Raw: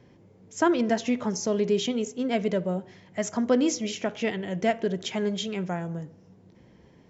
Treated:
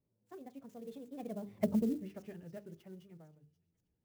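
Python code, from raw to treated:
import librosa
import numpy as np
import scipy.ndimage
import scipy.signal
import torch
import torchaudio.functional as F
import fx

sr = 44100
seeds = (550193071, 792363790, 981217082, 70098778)

y = fx.doppler_pass(x, sr, speed_mps=35, closest_m=3.7, pass_at_s=2.91)
y = fx.low_shelf(y, sr, hz=73.0, db=11.5)
y = fx.echo_wet_highpass(y, sr, ms=927, feedback_pct=42, hz=3900.0, wet_db=-19.0)
y = fx.stretch_vocoder(y, sr, factor=0.57)
y = fx.tilt_shelf(y, sr, db=5.5, hz=970.0)
y = fx.hum_notches(y, sr, base_hz=50, count=9)
y = fx.env_lowpass_down(y, sr, base_hz=390.0, full_db=-24.5)
y = fx.clock_jitter(y, sr, seeds[0], jitter_ms=0.024)
y = y * 10.0 ** (-2.5 / 20.0)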